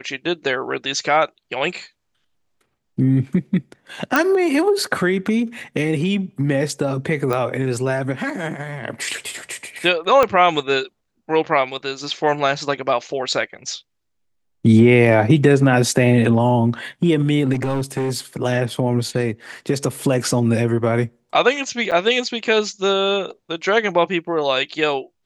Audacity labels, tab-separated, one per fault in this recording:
4.160000	4.160000	pop -3 dBFS
7.330000	7.330000	pop
10.230000	10.230000	pop -4 dBFS
17.530000	18.370000	clipped -17.5 dBFS
21.910000	21.920000	gap 7.6 ms

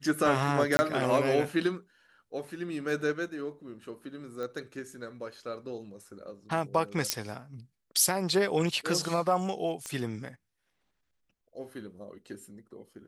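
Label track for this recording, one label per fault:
0.770000	0.790000	gap 20 ms
4.430000	4.430000	pop -26 dBFS
7.100000	7.100000	pop -8 dBFS
9.860000	9.860000	pop -21 dBFS

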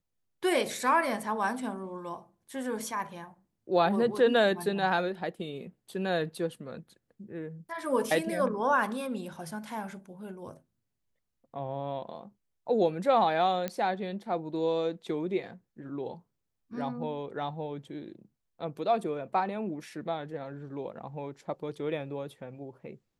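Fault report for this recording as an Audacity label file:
13.680000	13.680000	pop -18 dBFS

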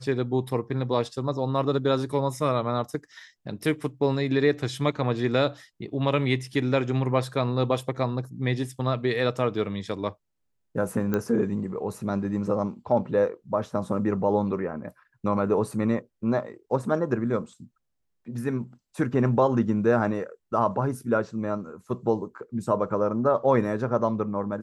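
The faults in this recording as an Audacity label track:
11.140000	11.140000	pop -14 dBFS

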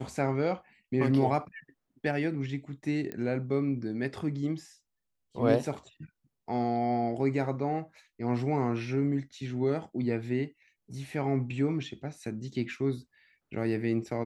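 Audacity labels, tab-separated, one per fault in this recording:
3.120000	3.120000	pop -23 dBFS

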